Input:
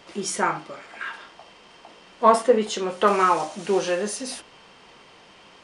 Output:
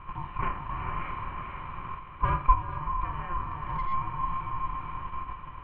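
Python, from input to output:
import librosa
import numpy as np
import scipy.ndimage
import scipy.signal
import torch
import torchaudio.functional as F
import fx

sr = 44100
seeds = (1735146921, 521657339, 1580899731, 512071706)

p1 = fx.bin_compress(x, sr, power=0.6)
p2 = fx.low_shelf(p1, sr, hz=100.0, db=-12.0)
p3 = p2 + fx.echo_diffused(p2, sr, ms=455, feedback_pct=44, wet_db=-5, dry=0)
p4 = fx.rider(p3, sr, range_db=4, speed_s=2.0)
p5 = fx.leveller(p4, sr, passes=1, at=(0.69, 2.54))
p6 = fx.level_steps(p5, sr, step_db=14)
p7 = p5 + F.gain(torch.from_numpy(p6), 1.0).numpy()
p8 = fx.tube_stage(p7, sr, drive_db=2.0, bias=0.45)
p9 = fx.formant_cascade(p8, sr, vowel='e')
p10 = fx.clip_hard(p9, sr, threshold_db=-22.5, at=(3.44, 3.92), fade=0.02)
p11 = p10 * np.sin(2.0 * np.pi * 530.0 * np.arange(len(p10)) / sr)
y = fx.air_absorb(p11, sr, metres=260.0)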